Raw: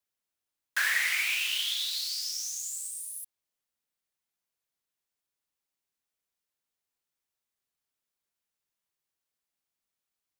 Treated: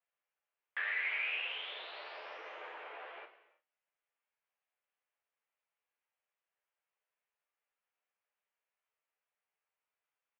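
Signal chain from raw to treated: tracing distortion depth 0.08 ms; compression, threshold -31 dBFS, peak gain reduction 8.5 dB; saturation -31 dBFS, distortion -15 dB; early reflections 12 ms -3 dB, 39 ms -8.5 dB; reverberation, pre-delay 3 ms, DRR 8.5 dB; mistuned SSB +97 Hz 350–2700 Hz

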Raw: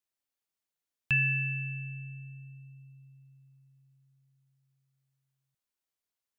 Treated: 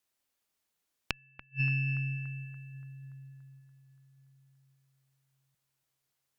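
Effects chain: inverted gate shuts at -25 dBFS, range -42 dB; bucket-brigade echo 287 ms, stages 4096, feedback 64%, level -12 dB; Chebyshev shaper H 2 -9 dB, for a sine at -20 dBFS; trim +7.5 dB

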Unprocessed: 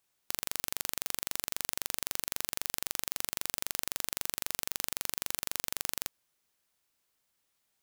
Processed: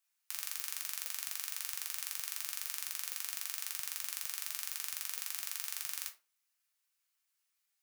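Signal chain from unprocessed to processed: high-pass 1.4 kHz 12 dB/octave; peaking EQ 3.5 kHz -3 dB 0.82 oct; reverberation RT60 0.35 s, pre-delay 5 ms, DRR 0 dB; trim -5.5 dB

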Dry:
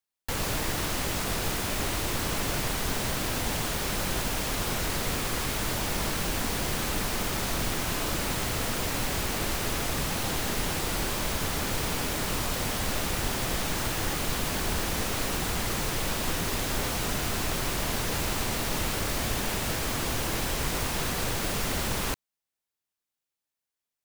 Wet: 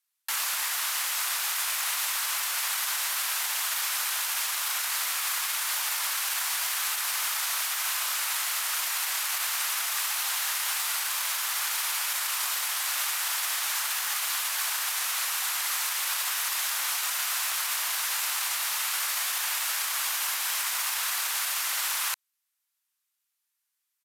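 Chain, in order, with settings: high-pass 1 kHz 24 dB/octave; treble shelf 10 kHz +9 dB; peak limiter -23 dBFS, peak gain reduction 7.5 dB; resampled via 32 kHz; trim +5.5 dB

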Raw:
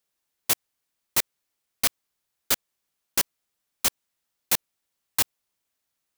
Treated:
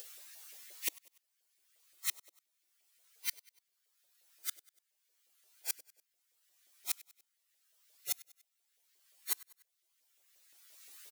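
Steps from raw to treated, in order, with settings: coarse spectral quantiser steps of 15 dB; amplifier tone stack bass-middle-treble 10-0-1; upward compressor, threshold -35 dBFS; plain phase-vocoder stretch 1.8×; inverted gate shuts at -32 dBFS, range -36 dB; resonant low shelf 260 Hz -6.5 dB, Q 3; feedback delay 97 ms, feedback 49%, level -21.5 dB; LFO high-pass saw up 5.7 Hz 540–2000 Hz; trim +13.5 dB

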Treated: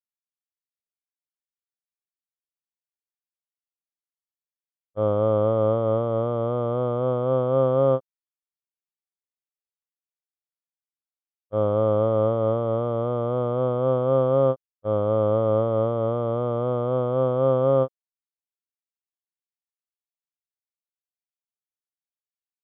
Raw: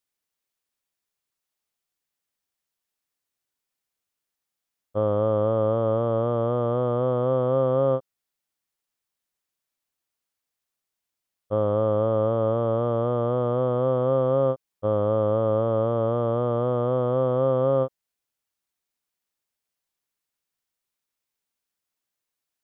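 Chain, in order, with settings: expander -16 dBFS; level rider gain up to 14 dB; trim -6.5 dB

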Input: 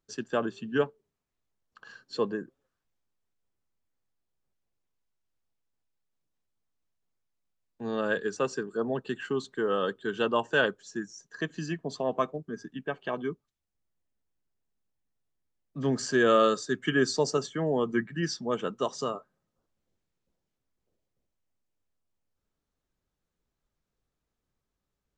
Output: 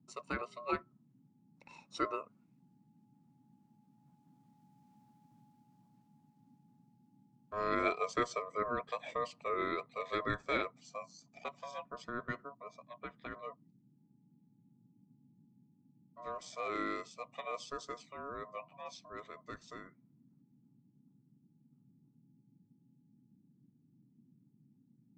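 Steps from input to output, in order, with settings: Doppler pass-by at 5.10 s, 30 m/s, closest 20 m; ring modulator 840 Hz; band noise 120–270 Hz -78 dBFS; trim +11 dB

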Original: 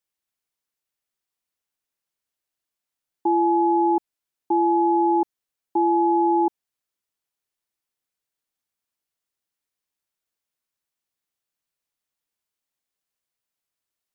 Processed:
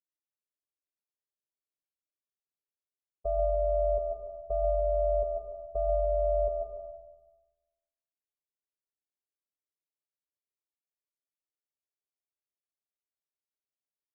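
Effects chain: dead-time distortion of 0.1 ms; robot voice 180 Hz; ring modulator 310 Hz; steep low-pass 690 Hz 36 dB/octave; bass shelf 190 Hz -7.5 dB; feedback delay 146 ms, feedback 37%, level -8.5 dB; algorithmic reverb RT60 1.1 s, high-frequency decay 1×, pre-delay 95 ms, DRR 3.5 dB

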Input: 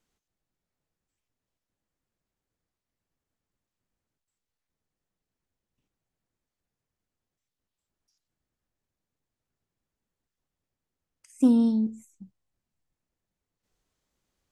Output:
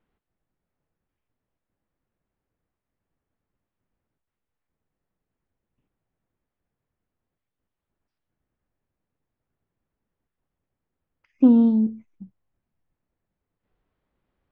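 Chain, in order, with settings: Gaussian low-pass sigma 3.2 samples; trim +5 dB

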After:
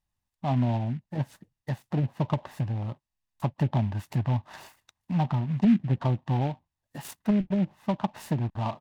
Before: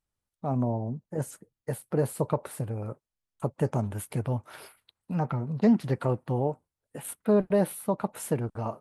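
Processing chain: low-pass that closes with the level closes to 320 Hz, closed at -20 dBFS; comb 1.1 ms, depth 75%; delay time shaken by noise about 2 kHz, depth 0.033 ms

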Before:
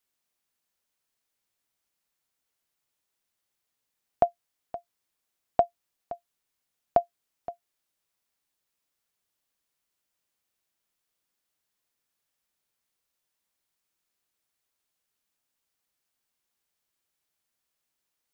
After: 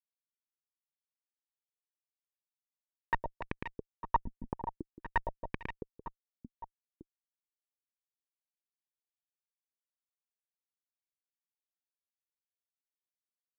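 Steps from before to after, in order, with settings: comb filter that takes the minimum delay 2.5 ms; high-pass 110 Hz 24 dB/octave; resonant low shelf 340 Hz +7.5 dB, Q 1.5; level rider gain up to 13.5 dB; Schmitt trigger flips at -19.5 dBFS; on a send: reverse bouncing-ball echo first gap 150 ms, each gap 1.5×, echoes 5; on the sum: speed mistake 33 rpm record played at 45 rpm; step-sequenced low-pass 3.8 Hz 240–2200 Hz; trim +8.5 dB

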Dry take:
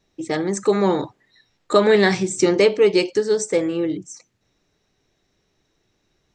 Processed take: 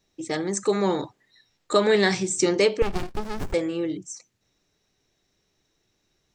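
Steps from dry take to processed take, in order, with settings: treble shelf 3.9 kHz +7.5 dB; 2.82–3.54 s: sliding maximum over 65 samples; trim -5 dB

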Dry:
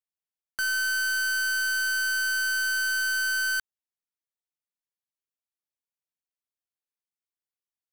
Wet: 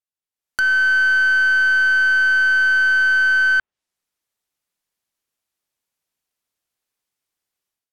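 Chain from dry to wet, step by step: low-pass that closes with the level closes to 2.6 kHz, closed at -29.5 dBFS; level rider gain up to 14.5 dB; dynamic bell 4.9 kHz, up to -5 dB, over -35 dBFS, Q 0.84; trim -1.5 dB

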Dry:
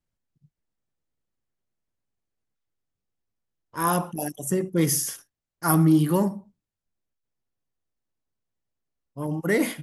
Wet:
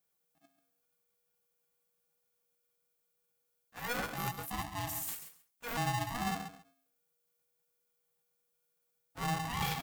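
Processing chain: sawtooth pitch modulation +7 st, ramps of 577 ms; bass shelf 240 Hz -10.5 dB; reverse; compression 12:1, threshold -35 dBFS, peak gain reduction 16.5 dB; reverse; added noise violet -79 dBFS; de-hum 106.1 Hz, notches 3; small resonant body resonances 320/650/960/2800 Hz, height 14 dB, ringing for 90 ms; on a send: feedback delay 137 ms, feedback 17%, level -10 dB; on the sum: polarity switched at an audio rate 480 Hz; trim -2 dB

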